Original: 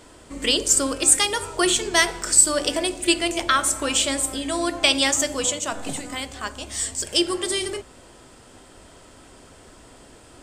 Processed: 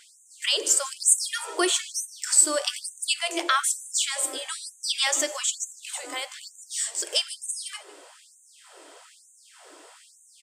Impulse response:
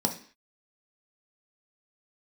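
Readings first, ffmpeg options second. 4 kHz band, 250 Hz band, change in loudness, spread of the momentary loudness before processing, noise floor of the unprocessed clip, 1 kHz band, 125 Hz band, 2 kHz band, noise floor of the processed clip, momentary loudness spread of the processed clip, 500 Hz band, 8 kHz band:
−4.5 dB, −12.0 dB, −4.0 dB, 14 LU, −49 dBFS, −5.0 dB, below −40 dB, −6.0 dB, −56 dBFS, 13 LU, −8.0 dB, −3.0 dB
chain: -filter_complex "[0:a]aecho=1:1:152:0.0944,asplit=2[link_01][link_02];[link_02]acompressor=threshold=-31dB:ratio=6,volume=-3dB[link_03];[link_01][link_03]amix=inputs=2:normalize=0,afftfilt=real='re*gte(b*sr/1024,260*pow(6200/260,0.5+0.5*sin(2*PI*1.1*pts/sr)))':imag='im*gte(b*sr/1024,260*pow(6200/260,0.5+0.5*sin(2*PI*1.1*pts/sr)))':win_size=1024:overlap=0.75,volume=-4dB"

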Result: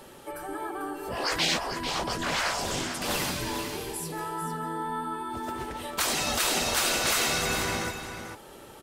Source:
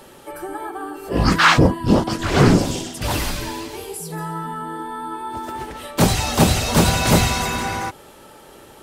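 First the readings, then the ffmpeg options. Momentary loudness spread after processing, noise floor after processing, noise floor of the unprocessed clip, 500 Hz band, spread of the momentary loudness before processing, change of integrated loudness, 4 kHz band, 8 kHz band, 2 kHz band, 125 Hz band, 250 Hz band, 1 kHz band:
12 LU, −48 dBFS, −45 dBFS, −10.5 dB, 16 LU, −9.5 dB, −4.0 dB, −3.5 dB, −7.0 dB, −19.5 dB, −15.5 dB, −8.5 dB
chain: -filter_complex "[0:a]afftfilt=real='re*lt(hypot(re,im),0.316)':imag='im*lt(hypot(re,im),0.316)':win_size=1024:overlap=0.75,asplit=2[link_01][link_02];[link_02]aecho=0:1:445:0.376[link_03];[link_01][link_03]amix=inputs=2:normalize=0,volume=-4dB"

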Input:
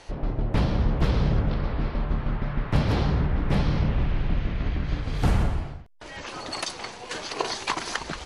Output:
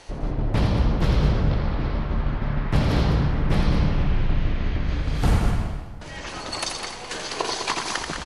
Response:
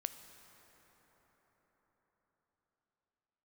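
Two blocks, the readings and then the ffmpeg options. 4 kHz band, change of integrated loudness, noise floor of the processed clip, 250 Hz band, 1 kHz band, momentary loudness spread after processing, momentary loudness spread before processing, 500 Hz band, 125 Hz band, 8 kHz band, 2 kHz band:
+3.5 dB, +2.5 dB, −36 dBFS, +2.5 dB, +2.5 dB, 10 LU, 10 LU, +2.0 dB, +2.5 dB, +5.0 dB, +2.5 dB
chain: -filter_complex "[0:a]aecho=1:1:84.55|204.1:0.501|0.398,asplit=2[link_01][link_02];[1:a]atrim=start_sample=2205,highshelf=frequency=5100:gain=9[link_03];[link_02][link_03]afir=irnorm=-1:irlink=0,volume=-1dB[link_04];[link_01][link_04]amix=inputs=2:normalize=0,volume=-4dB"

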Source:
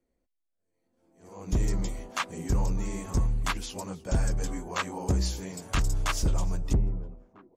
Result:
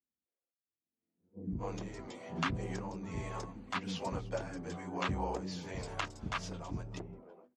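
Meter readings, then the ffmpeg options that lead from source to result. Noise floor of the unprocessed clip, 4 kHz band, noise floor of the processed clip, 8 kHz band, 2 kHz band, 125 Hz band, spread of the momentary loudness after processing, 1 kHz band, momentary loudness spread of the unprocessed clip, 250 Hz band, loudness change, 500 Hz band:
−79 dBFS, −7.0 dB, below −85 dBFS, −14.5 dB, −5.5 dB, −11.0 dB, 10 LU, −3.5 dB, 9 LU, −6.0 dB, −9.0 dB, −3.5 dB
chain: -filter_complex "[0:a]agate=range=-25dB:threshold=-44dB:ratio=16:detection=peak,bandreject=frequency=50:width_type=h:width=6,bandreject=frequency=100:width_type=h:width=6,bandreject=frequency=150:width_type=h:width=6,bandreject=frequency=200:width_type=h:width=6,bandreject=frequency=250:width_type=h:width=6,acompressor=threshold=-41dB:ratio=4,aphaser=in_gain=1:out_gain=1:delay=4.4:decay=0.2:speed=0.4:type=sinusoidal,highpass=110,lowpass=3800,acrossover=split=330[link_01][link_02];[link_02]adelay=260[link_03];[link_01][link_03]amix=inputs=2:normalize=0,volume=7.5dB"

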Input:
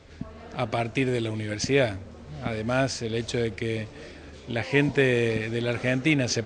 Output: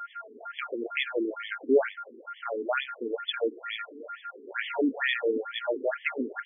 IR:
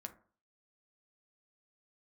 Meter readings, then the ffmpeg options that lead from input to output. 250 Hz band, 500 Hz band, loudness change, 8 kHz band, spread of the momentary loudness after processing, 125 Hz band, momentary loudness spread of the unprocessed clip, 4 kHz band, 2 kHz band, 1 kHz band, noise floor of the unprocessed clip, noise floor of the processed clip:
−6.0 dB, −3.0 dB, −4.5 dB, below −40 dB, 15 LU, below −35 dB, 17 LU, −3.0 dB, −3.0 dB, −0.5 dB, −45 dBFS, −52 dBFS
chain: -af "aeval=exprs='val(0)+0.0141*sin(2*PI*1400*n/s)':channel_layout=same,aexciter=amount=7.9:drive=7.7:freq=3900,afftfilt=real='re*between(b*sr/1024,310*pow(2500/310,0.5+0.5*sin(2*PI*2.2*pts/sr))/1.41,310*pow(2500/310,0.5+0.5*sin(2*PI*2.2*pts/sr))*1.41)':imag='im*between(b*sr/1024,310*pow(2500/310,0.5+0.5*sin(2*PI*2.2*pts/sr))/1.41,310*pow(2500/310,0.5+0.5*sin(2*PI*2.2*pts/sr))*1.41)':win_size=1024:overlap=0.75,volume=3dB"

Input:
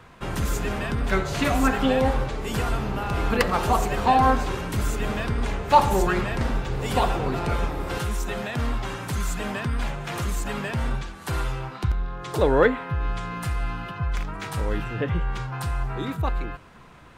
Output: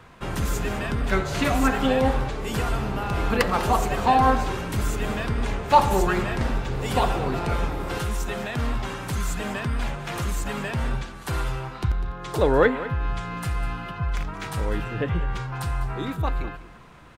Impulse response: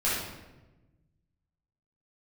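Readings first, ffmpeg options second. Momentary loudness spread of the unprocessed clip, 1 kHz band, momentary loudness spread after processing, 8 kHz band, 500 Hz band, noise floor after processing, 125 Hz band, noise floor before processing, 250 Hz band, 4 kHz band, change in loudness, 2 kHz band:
11 LU, 0.0 dB, 10 LU, 0.0 dB, 0.0 dB, −39 dBFS, 0.0 dB, −43 dBFS, 0.0 dB, 0.0 dB, 0.0 dB, 0.0 dB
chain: -af "aecho=1:1:200:0.178"

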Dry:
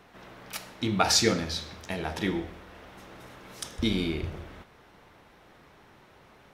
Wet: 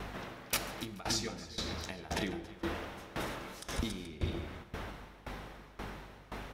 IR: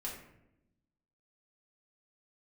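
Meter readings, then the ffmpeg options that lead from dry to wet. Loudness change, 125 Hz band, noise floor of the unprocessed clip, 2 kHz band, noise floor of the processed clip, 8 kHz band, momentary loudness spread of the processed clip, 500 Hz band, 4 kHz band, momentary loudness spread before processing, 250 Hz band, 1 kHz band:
−11.0 dB, −6.0 dB, −57 dBFS, −5.5 dB, −55 dBFS, −9.0 dB, 12 LU, −8.5 dB, −9.0 dB, 25 LU, −9.0 dB, −8.0 dB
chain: -filter_complex "[0:a]acompressor=threshold=-41dB:ratio=16,aeval=exprs='val(0)+0.00158*(sin(2*PI*50*n/s)+sin(2*PI*2*50*n/s)/2+sin(2*PI*3*50*n/s)/3+sin(2*PI*4*50*n/s)/4+sin(2*PI*5*50*n/s)/5)':channel_layout=same,asplit=2[link_01][link_02];[link_02]aecho=0:1:141|276|285|428:0.15|0.282|0.282|0.211[link_03];[link_01][link_03]amix=inputs=2:normalize=0,aeval=exprs='val(0)*pow(10,-19*if(lt(mod(1.9*n/s,1),2*abs(1.9)/1000),1-mod(1.9*n/s,1)/(2*abs(1.9)/1000),(mod(1.9*n/s,1)-2*abs(1.9)/1000)/(1-2*abs(1.9)/1000))/20)':channel_layout=same,volume=13dB"

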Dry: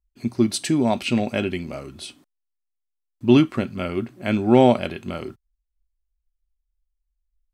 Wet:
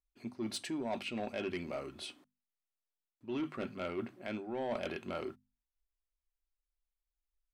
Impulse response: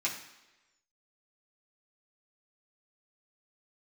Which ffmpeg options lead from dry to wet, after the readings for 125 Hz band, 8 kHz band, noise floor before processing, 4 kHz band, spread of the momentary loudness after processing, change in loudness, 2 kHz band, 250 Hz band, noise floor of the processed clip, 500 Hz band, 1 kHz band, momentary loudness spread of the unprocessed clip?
−23.0 dB, can't be measured, −79 dBFS, −14.0 dB, 9 LU, −19.0 dB, −13.0 dB, −20.0 dB, below −85 dBFS, −17.0 dB, −17.0 dB, 19 LU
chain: -af "areverse,acompressor=threshold=-24dB:ratio=16,areverse,bass=frequency=250:gain=-10,treble=frequency=4000:gain=-8,bandreject=frequency=50:width_type=h:width=6,bandreject=frequency=100:width_type=h:width=6,bandreject=frequency=150:width_type=h:width=6,bandreject=frequency=200:width_type=h:width=6,bandreject=frequency=250:width_type=h:width=6,asoftclip=type=tanh:threshold=-25dB,volume=-4dB"

